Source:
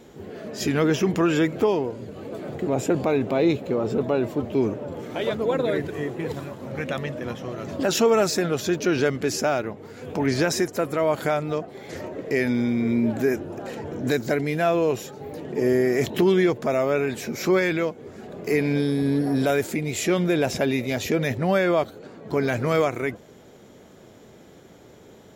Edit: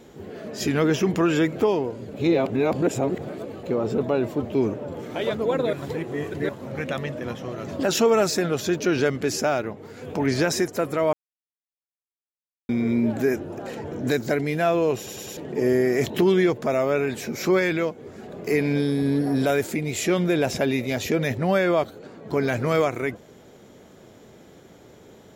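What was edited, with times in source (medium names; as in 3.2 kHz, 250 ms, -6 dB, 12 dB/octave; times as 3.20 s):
2.14–3.63 s: reverse
5.73–6.49 s: reverse
11.13–12.69 s: mute
14.97 s: stutter in place 0.10 s, 4 plays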